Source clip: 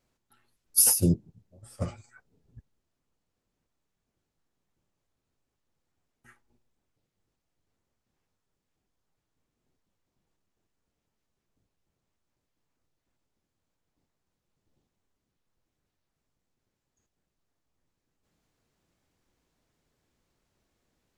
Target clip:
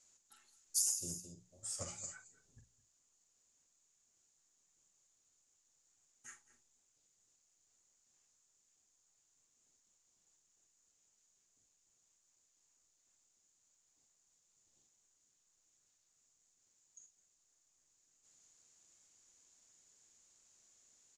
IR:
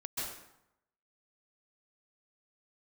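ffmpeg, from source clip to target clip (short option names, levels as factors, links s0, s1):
-filter_complex "[0:a]lowpass=f=6900:t=q:w=7.9,lowshelf=f=410:g=-10,bandreject=f=60:t=h:w=6,bandreject=f=120:t=h:w=6,bandreject=f=180:t=h:w=6,asplit=2[s0][s1];[s1]adelay=45,volume=0.299[s2];[s0][s2]amix=inputs=2:normalize=0,asplit=2[s3][s4];[s4]aecho=0:1:215:0.126[s5];[s3][s5]amix=inputs=2:normalize=0,acompressor=threshold=0.00891:ratio=5,highshelf=f=4700:g=11,volume=0.75"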